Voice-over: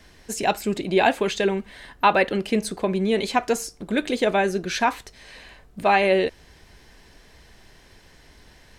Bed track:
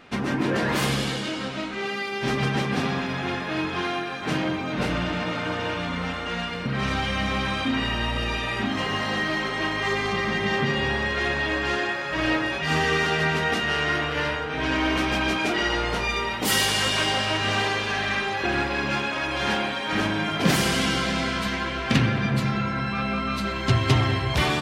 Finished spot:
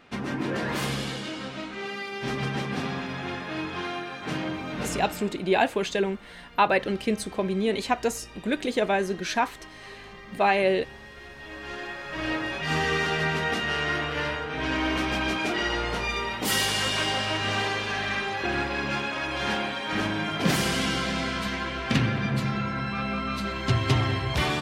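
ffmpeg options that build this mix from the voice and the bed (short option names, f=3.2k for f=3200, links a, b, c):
-filter_complex "[0:a]adelay=4550,volume=-3.5dB[a];[1:a]volume=12dB,afade=t=out:st=4.73:d=0.68:silence=0.177828,afade=t=in:st=11.35:d=1.38:silence=0.141254[b];[a][b]amix=inputs=2:normalize=0"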